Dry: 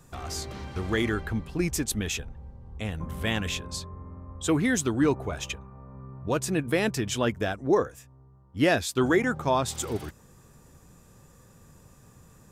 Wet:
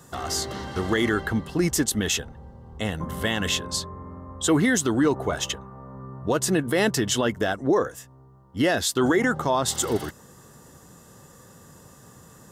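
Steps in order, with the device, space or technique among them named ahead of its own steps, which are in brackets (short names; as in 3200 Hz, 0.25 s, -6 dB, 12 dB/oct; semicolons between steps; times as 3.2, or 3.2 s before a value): PA system with an anti-feedback notch (HPF 190 Hz 6 dB/oct; Butterworth band-stop 2400 Hz, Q 6.2; limiter -20 dBFS, peak gain reduction 9 dB); gain +8 dB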